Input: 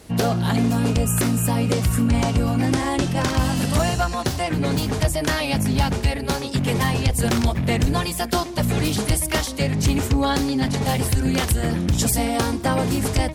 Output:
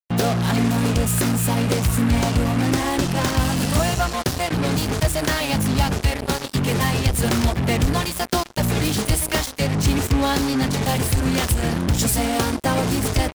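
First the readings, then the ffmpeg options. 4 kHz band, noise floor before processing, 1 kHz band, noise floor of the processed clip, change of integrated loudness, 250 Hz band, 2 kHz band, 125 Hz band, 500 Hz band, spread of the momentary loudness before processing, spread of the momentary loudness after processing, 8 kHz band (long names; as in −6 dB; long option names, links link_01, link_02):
+1.5 dB, −29 dBFS, +1.0 dB, −32 dBFS, +0.5 dB, 0.0 dB, +1.5 dB, 0.0 dB, +0.5 dB, 3 LU, 3 LU, +1.5 dB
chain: -af "acrusher=bits=3:mix=0:aa=0.5"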